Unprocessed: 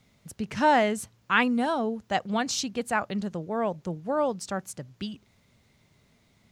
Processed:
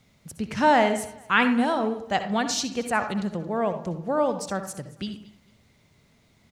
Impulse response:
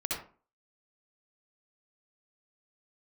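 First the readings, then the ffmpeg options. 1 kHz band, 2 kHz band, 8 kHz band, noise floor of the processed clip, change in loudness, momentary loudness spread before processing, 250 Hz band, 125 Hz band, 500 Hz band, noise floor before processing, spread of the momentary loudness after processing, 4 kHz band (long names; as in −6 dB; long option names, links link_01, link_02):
+2.5 dB, +2.5 dB, +2.0 dB, −62 dBFS, +2.5 dB, 15 LU, +3.0 dB, +2.5 dB, +2.5 dB, −65 dBFS, 15 LU, +2.5 dB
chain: -filter_complex "[0:a]aecho=1:1:224|448:0.0891|0.0258,asplit=2[link_01][link_02];[1:a]atrim=start_sample=2205[link_03];[link_02][link_03]afir=irnorm=-1:irlink=0,volume=-10.5dB[link_04];[link_01][link_04]amix=inputs=2:normalize=0"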